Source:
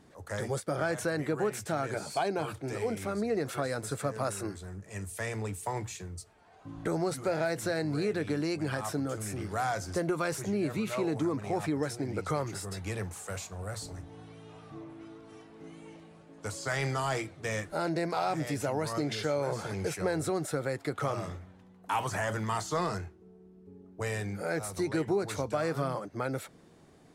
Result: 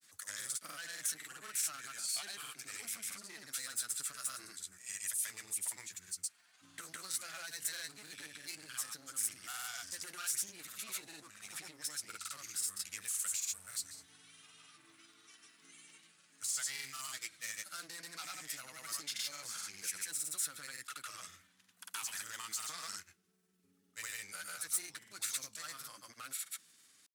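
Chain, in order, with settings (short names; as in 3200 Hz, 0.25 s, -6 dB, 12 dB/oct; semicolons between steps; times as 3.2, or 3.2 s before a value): band shelf 590 Hz -12 dB; one-sided clip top -38.5 dBFS; compressor, threshold -37 dBFS, peak gain reduction 7 dB; differentiator; grains, pitch spread up and down by 0 st; gain +10.5 dB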